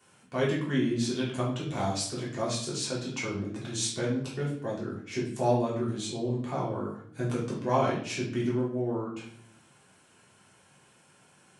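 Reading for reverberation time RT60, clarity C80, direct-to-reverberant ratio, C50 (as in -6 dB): 0.65 s, 9.0 dB, -7.0 dB, 4.5 dB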